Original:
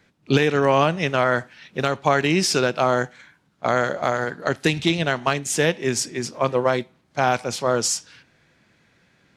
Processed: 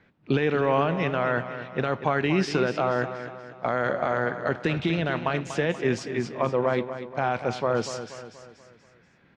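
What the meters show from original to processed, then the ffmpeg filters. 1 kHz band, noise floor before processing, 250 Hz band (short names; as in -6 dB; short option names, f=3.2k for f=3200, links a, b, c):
-5.0 dB, -62 dBFS, -3.0 dB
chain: -filter_complex "[0:a]alimiter=limit=-13dB:level=0:latency=1:release=21,lowpass=2.6k,asplit=2[a][b];[b]aecho=0:1:240|480|720|960|1200:0.282|0.135|0.0649|0.0312|0.015[c];[a][c]amix=inputs=2:normalize=0"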